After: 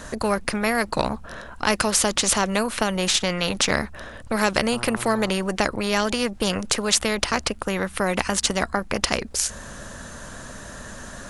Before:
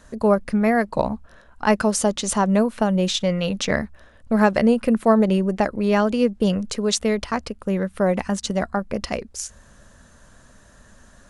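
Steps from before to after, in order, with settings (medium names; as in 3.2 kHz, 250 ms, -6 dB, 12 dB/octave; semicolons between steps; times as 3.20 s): 4.71–5.28 s: mains buzz 120 Hz, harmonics 11, -42 dBFS -5 dB/octave; spectrum-flattening compressor 2:1; trim +3 dB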